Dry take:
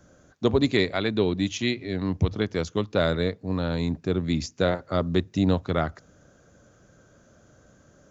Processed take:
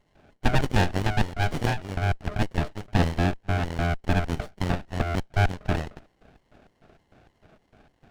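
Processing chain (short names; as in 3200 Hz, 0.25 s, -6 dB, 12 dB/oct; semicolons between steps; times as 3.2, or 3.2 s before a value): in parallel at -6.5 dB: soft clip -19.5 dBFS, distortion -11 dB; on the sum: ring modulator 520 Hz; LFO high-pass square 3.3 Hz 610–2500 Hz; speaker cabinet 390–4200 Hz, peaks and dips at 600 Hz -4 dB, 880 Hz +8 dB, 3000 Hz +5 dB; running maximum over 33 samples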